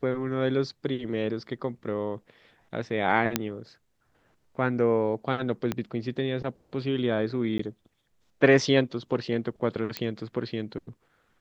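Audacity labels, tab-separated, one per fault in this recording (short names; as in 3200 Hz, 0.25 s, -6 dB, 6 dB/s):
3.360000	3.360000	pop -7 dBFS
5.720000	5.720000	pop -14 dBFS
7.580000	7.590000	gap 14 ms
9.970000	9.970000	pop -14 dBFS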